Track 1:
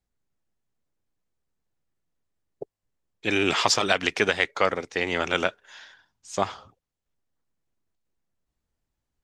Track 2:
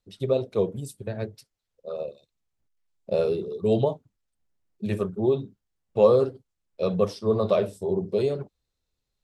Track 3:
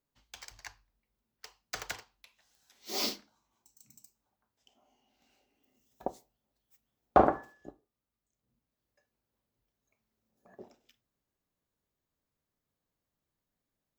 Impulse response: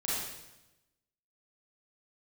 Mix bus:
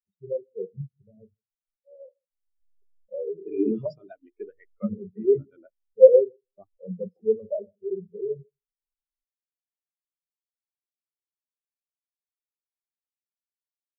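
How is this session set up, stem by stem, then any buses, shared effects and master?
+0.5 dB, 0.20 s, no send, echo send -17.5 dB, peaking EQ 310 Hz +5.5 dB 0.56 oct
-3.5 dB, 0.00 s, no send, echo send -11.5 dB, peaking EQ 110 Hz -9 dB 0.44 oct; level flattener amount 50%
-13.0 dB, 0.00 s, no send, no echo send, peaking EQ 360 Hz +10.5 dB 0.57 oct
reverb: none
echo: feedback delay 159 ms, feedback 32%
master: bass shelf 150 Hz +10 dB; hum notches 60/120/180/240/300/360/420/480/540 Hz; spectral contrast expander 4:1

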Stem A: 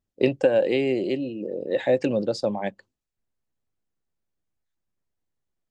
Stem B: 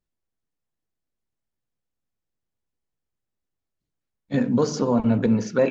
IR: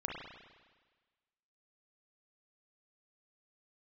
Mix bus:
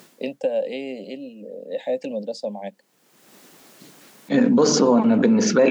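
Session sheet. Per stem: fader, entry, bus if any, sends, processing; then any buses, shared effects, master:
-2.5 dB, 0.00 s, no send, static phaser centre 350 Hz, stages 6
+2.5 dB, 0.00 s, no send, level flattener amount 70%; auto duck -23 dB, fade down 0.40 s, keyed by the first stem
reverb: none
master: high-pass 190 Hz 24 dB/octave

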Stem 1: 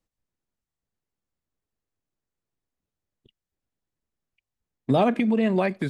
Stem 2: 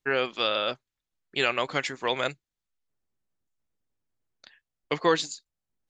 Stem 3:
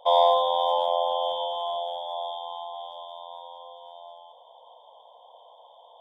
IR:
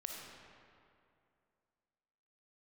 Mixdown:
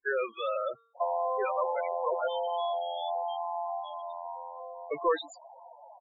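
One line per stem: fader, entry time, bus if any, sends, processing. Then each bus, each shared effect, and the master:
mute
-2.0 dB, 0.00 s, no send, peaking EQ 200 Hz -3 dB 0.66 oct; feedback comb 230 Hz, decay 0.72 s, harmonics all, mix 30%; overdrive pedal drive 15 dB, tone 1.6 kHz, clips at -12 dBFS
+1.5 dB, 0.95 s, send -12 dB, treble shelf 2.5 kHz +4.5 dB; compression 6:1, threshold -29 dBFS, peak gain reduction 13.5 dB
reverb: on, RT60 2.5 s, pre-delay 15 ms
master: loudest bins only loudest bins 8

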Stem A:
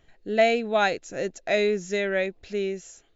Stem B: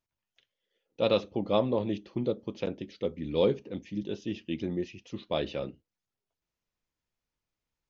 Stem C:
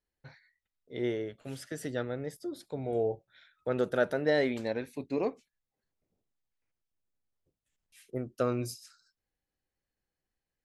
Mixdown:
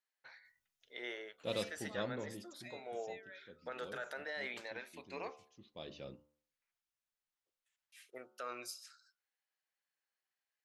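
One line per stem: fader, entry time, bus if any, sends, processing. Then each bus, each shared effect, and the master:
-14.5 dB, 1.15 s, bus A, no send, expander on every frequency bin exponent 2; compression 2.5:1, threshold -34 dBFS, peak gain reduction 12 dB
2.17 s -3 dB -> 2.70 s -14.5 dB, 0.45 s, no bus, no send, tone controls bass +3 dB, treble +12 dB; auto duck -12 dB, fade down 1.85 s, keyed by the third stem
+2.5 dB, 0.00 s, bus A, no send, treble shelf 4.9 kHz -8.5 dB
bus A: 0.0 dB, high-pass 1.1 kHz 12 dB/octave; peak limiter -32.5 dBFS, peak gain reduction 12.5 dB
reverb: none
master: de-hum 74.28 Hz, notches 20

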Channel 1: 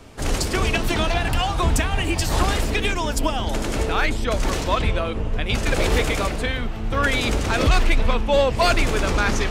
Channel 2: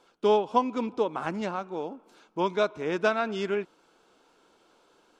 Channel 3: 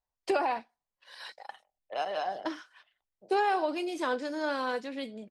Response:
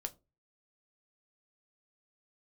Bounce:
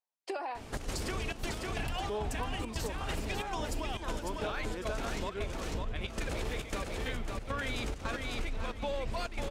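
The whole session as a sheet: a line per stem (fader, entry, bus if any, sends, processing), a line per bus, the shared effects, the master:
-2.0 dB, 0.55 s, no send, echo send -5 dB, peak limiter -14.5 dBFS, peak gain reduction 6.5 dB; trance gate "xx.xxxx.x..x" 136 bpm -12 dB
-3.5 dB, 1.85 s, no send, no echo send, none
-5.0 dB, 0.00 s, no send, no echo send, high-pass 310 Hz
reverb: none
echo: feedback delay 550 ms, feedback 22%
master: compression 4:1, threshold -34 dBFS, peak gain reduction 14 dB

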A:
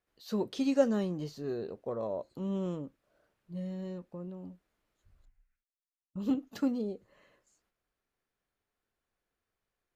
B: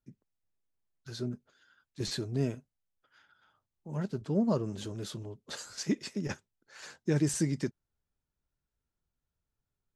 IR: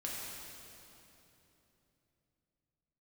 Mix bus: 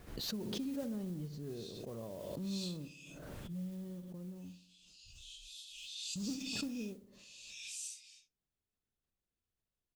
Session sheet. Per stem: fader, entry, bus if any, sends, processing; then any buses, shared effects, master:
-2.5 dB, 0.00 s, no send, echo send -13.5 dB, modulation noise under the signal 13 dB; FFT filter 160 Hz 0 dB, 530 Hz -10 dB, 1.5 kHz -13 dB; compression, threshold -35 dBFS, peak gain reduction 7.5 dB
+2.0 dB, 0.50 s, no send, no echo send, phase randomisation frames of 200 ms; rippled Chebyshev high-pass 2.5 kHz, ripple 3 dB; tilt EQ -3 dB/octave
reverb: none
echo: feedback delay 61 ms, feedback 55%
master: swell ahead of each attack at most 27 dB/s

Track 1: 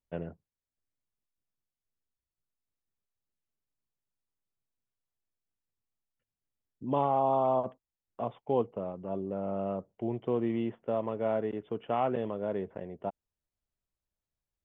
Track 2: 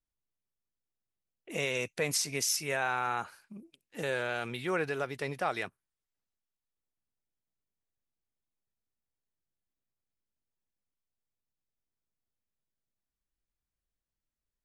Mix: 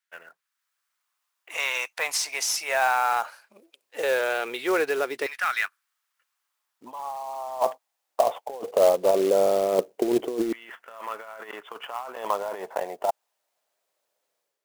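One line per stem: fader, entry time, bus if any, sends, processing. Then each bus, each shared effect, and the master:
-1.5 dB, 0.00 s, no send, level rider gain up to 12 dB
-1.0 dB, 0.00 s, no send, overdrive pedal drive 8 dB, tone 6.3 kHz, clips at -17 dBFS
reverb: none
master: compressor with a negative ratio -25 dBFS, ratio -0.5; LFO high-pass saw down 0.19 Hz 330–1600 Hz; short-mantissa float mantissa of 2-bit

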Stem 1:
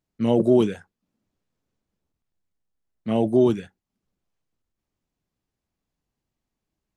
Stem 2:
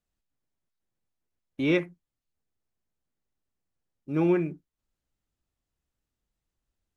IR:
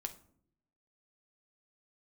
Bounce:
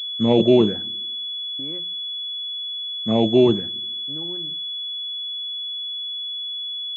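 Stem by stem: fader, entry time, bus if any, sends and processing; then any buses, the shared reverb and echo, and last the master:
0.0 dB, 0.00 s, muted 0.87–1.57 s, send -5 dB, none
-5.5 dB, 0.00 s, send -9 dB, local Wiener filter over 25 samples; compression 6:1, threshold -32 dBFS, peak gain reduction 12 dB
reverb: on, RT60 0.65 s, pre-delay 6 ms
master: class-D stage that switches slowly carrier 3.4 kHz

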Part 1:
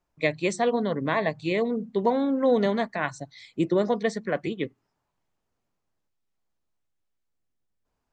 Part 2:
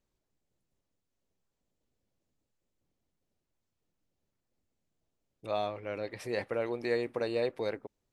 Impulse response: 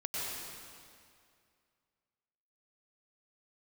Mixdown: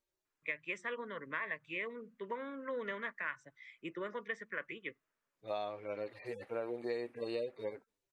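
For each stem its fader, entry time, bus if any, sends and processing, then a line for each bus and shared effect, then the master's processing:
-3.0 dB, 0.25 s, no send, three-band isolator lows -18 dB, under 530 Hz, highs -24 dB, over 4.6 kHz; static phaser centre 1.8 kHz, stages 4
+0.5 dB, 0.00 s, no send, harmonic-percussive separation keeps harmonic; bass shelf 130 Hz -11 dB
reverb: none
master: bass shelf 370 Hz -4 dB; compression, threshold -34 dBFS, peak gain reduction 7.5 dB

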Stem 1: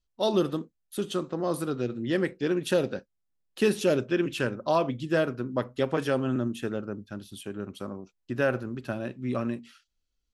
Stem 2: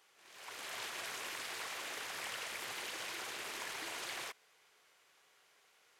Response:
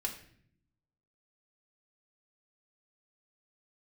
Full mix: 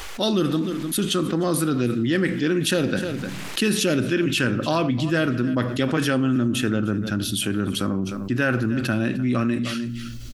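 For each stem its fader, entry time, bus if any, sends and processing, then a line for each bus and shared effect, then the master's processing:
+2.5 dB, 0.00 s, send -11.5 dB, echo send -19.5 dB, high-order bell 640 Hz -8 dB
-4.0 dB, 0.00 s, no send, no echo send, compression 2:1, threshold -59 dBFS, peak gain reduction 11 dB; auto duck -10 dB, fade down 0.95 s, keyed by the first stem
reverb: on, RT60 0.60 s, pre-delay 3 ms
echo: delay 304 ms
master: level flattener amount 70%

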